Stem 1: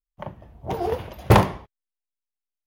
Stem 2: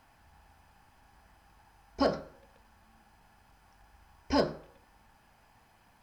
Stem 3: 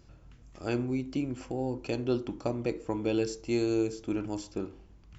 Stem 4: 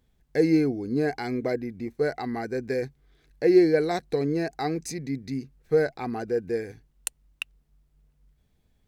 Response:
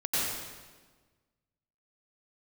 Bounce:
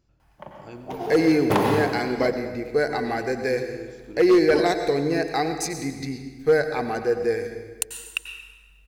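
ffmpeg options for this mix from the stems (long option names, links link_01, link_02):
-filter_complex "[0:a]highpass=190,adelay=200,volume=-8.5dB,asplit=2[link_01][link_02];[link_02]volume=-6dB[link_03];[1:a]adelay=200,volume=-3dB[link_04];[2:a]volume=-12dB,asplit=2[link_05][link_06];[link_06]volume=-18dB[link_07];[3:a]equalizer=frequency=180:width=0.56:gain=-8.5,acontrast=48,adelay=750,volume=0dB,asplit=2[link_08][link_09];[link_09]volume=-15dB[link_10];[4:a]atrim=start_sample=2205[link_11];[link_03][link_07][link_10]amix=inputs=3:normalize=0[link_12];[link_12][link_11]afir=irnorm=-1:irlink=0[link_13];[link_01][link_04][link_05][link_08][link_13]amix=inputs=5:normalize=0,asoftclip=type=hard:threshold=-11.5dB"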